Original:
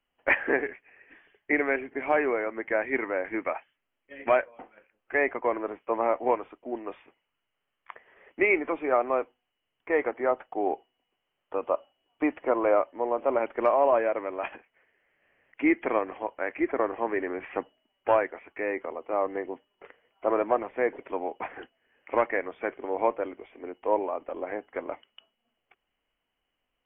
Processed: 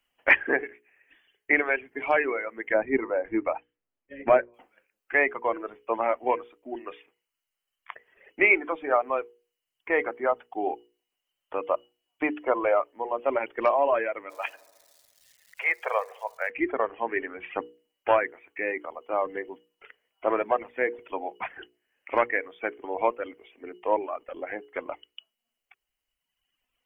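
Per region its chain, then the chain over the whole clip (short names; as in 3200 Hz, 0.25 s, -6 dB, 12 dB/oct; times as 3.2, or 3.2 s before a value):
2.74–4.54 LPF 2600 Hz + tilt shelf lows +8 dB, about 930 Hz
14.29–16.49 elliptic high-pass 470 Hz + crackle 550/s -51 dBFS + dark delay 71 ms, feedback 72%, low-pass 1200 Hz, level -14 dB
whole clip: reverb removal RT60 1.8 s; high shelf 2100 Hz +11 dB; notches 60/120/180/240/300/360/420/480 Hz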